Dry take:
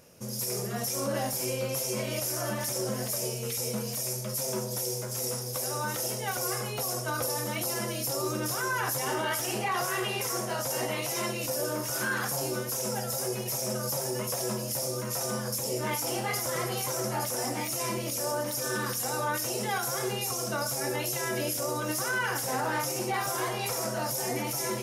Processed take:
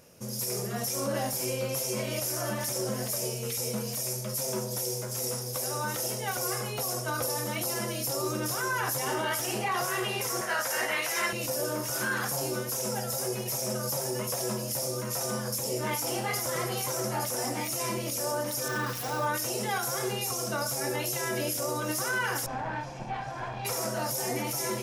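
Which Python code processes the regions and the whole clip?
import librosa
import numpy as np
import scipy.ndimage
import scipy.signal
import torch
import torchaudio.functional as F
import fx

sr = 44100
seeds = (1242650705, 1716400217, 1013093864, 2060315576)

y = fx.chain(x, sr, fx.highpass(hz=500.0, slope=6),
    fx.peak_eq(hz=1700.0, db=12.0, octaves=0.89), at=(10.41, 11.33))
y = fx.chain(y, sr, fx.median_filter(points=5),
    fx.high_shelf(hz=11000.0, db=4.5),
    fx.comb(ms=6.7, depth=0.36), at=(18.68, 19.27))
y = fx.chain(y, sr, fx.lower_of_two(delay_ms=1.2),
    fx.spacing_loss(db_at_10k=29), at=(22.46, 23.65))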